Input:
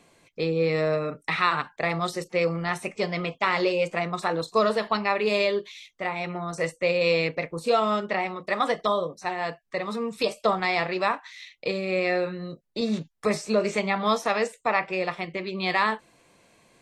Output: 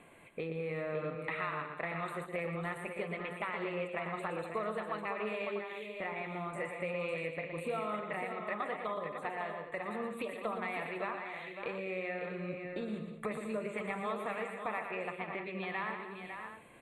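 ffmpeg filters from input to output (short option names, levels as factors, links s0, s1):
-filter_complex "[0:a]lowpass=8000,highshelf=f=2500:g=10.5,acompressor=threshold=0.01:ratio=3,asuperstop=centerf=5400:order=4:qfactor=0.64,asplit=2[s0][s1];[s1]aecho=0:1:118|199|311|552|643:0.422|0.251|0.178|0.398|0.282[s2];[s0][s2]amix=inputs=2:normalize=0"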